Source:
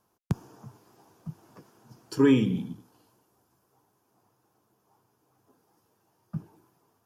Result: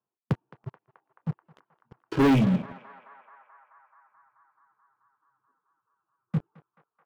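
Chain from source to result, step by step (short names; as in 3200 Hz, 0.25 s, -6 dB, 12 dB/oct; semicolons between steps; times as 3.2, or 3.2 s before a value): harmonic-percussive split percussive -6 dB; reverb removal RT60 1.5 s; Chebyshev band-pass 120–2800 Hz, order 3; sample leveller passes 5; on a send: narrowing echo 0.216 s, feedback 82%, band-pass 1200 Hz, level -15 dB; on the sum: gain -5 dB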